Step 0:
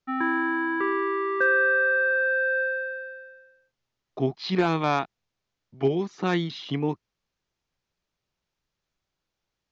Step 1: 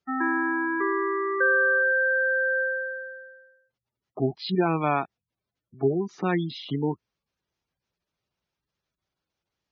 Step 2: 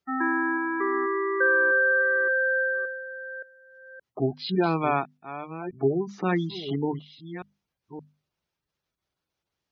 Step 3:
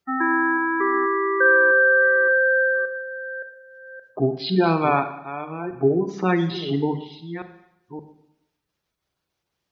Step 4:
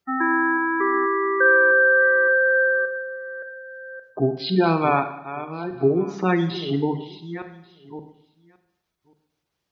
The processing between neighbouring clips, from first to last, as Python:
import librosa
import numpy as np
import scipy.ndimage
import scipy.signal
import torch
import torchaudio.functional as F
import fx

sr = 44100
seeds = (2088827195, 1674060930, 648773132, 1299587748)

y1 = fx.spec_gate(x, sr, threshold_db=-20, keep='strong')
y1 = scipy.signal.sosfilt(scipy.signal.butter(2, 51.0, 'highpass', fs=sr, output='sos'), y1)
y2 = fx.reverse_delay(y1, sr, ms=571, wet_db=-12.0)
y2 = fx.hum_notches(y2, sr, base_hz=50, count=5)
y3 = fx.rev_schroeder(y2, sr, rt60_s=0.82, comb_ms=32, drr_db=8.5)
y3 = y3 * librosa.db_to_amplitude(4.5)
y4 = y3 + 10.0 ** (-24.0 / 20.0) * np.pad(y3, (int(1139 * sr / 1000.0), 0))[:len(y3)]